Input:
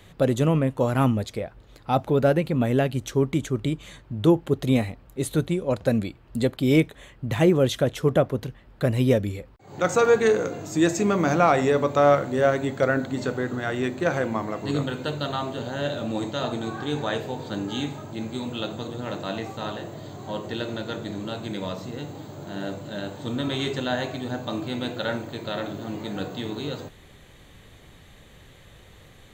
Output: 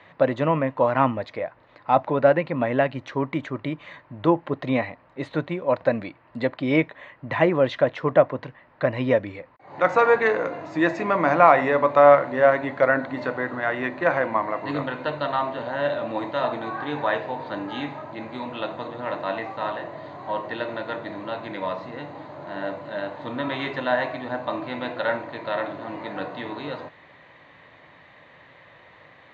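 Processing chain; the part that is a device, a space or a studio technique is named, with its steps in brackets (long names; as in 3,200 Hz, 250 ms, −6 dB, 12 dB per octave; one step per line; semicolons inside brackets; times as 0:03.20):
kitchen radio (loudspeaker in its box 200–3,700 Hz, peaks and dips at 210 Hz −8 dB, 400 Hz −8 dB, 610 Hz +5 dB, 1,000 Hz +9 dB, 1,900 Hz +7 dB, 3,300 Hz −7 dB)
level +1.5 dB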